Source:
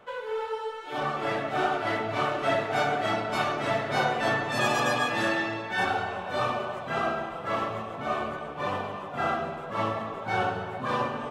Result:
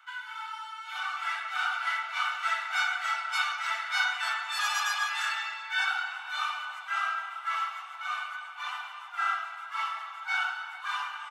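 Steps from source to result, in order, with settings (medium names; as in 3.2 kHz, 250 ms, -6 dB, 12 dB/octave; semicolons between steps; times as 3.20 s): steep high-pass 1 kHz 48 dB/octave; comb 1.4 ms, depth 67%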